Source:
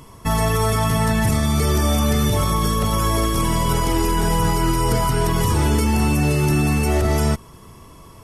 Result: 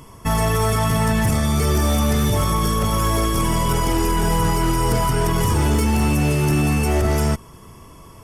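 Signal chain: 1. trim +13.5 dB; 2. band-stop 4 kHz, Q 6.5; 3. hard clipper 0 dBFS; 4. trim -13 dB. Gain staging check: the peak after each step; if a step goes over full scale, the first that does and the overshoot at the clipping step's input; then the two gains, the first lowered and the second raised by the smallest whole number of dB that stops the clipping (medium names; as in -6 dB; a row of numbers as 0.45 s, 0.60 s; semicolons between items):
+4.5 dBFS, +4.5 dBFS, 0.0 dBFS, -13.0 dBFS; step 1, 4.5 dB; step 1 +8.5 dB, step 4 -8 dB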